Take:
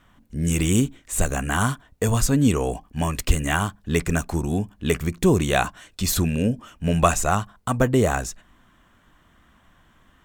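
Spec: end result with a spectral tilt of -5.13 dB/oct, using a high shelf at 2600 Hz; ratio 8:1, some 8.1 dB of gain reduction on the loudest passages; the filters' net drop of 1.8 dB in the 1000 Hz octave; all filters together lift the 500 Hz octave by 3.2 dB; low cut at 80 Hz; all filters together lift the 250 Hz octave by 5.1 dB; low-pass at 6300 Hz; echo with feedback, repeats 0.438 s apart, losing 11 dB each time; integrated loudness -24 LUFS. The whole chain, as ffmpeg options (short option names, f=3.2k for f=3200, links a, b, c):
-af "highpass=80,lowpass=6.3k,equalizer=f=250:t=o:g=6,equalizer=f=500:t=o:g=3,equalizer=f=1k:t=o:g=-5,highshelf=f=2.6k:g=5,acompressor=threshold=-17dB:ratio=8,aecho=1:1:438|876|1314:0.282|0.0789|0.0221"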